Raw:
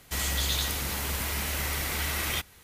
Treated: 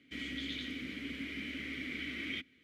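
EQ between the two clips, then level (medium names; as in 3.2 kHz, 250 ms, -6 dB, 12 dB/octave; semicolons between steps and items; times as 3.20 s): vowel filter i; bass shelf 500 Hz -4 dB; peaking EQ 12 kHz -14.5 dB 2.8 oct; +10.0 dB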